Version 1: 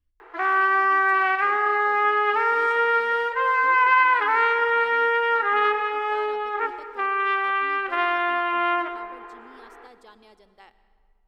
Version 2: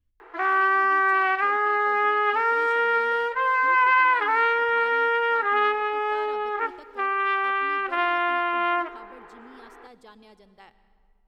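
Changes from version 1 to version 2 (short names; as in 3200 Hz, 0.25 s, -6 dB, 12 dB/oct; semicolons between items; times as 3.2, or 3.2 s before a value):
background: send -9.5 dB; master: add bell 150 Hz +14 dB 0.78 oct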